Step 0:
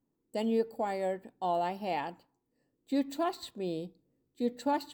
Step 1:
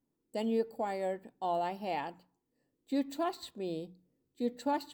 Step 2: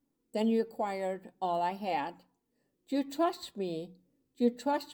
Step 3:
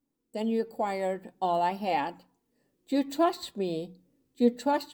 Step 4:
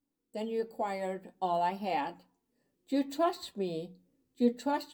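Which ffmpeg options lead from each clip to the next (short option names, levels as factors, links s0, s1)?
-af "bandreject=f=60:t=h:w=6,bandreject=f=120:t=h:w=6,bandreject=f=180:t=h:w=6,volume=0.794"
-af "flanger=delay=3.4:depth=2.9:regen=55:speed=0.48:shape=triangular,volume=2.11"
-af "dynaudnorm=f=440:g=3:m=2.24,volume=0.75"
-af "flanger=delay=10:depth=1.9:regen=-52:speed=0.57:shape=triangular"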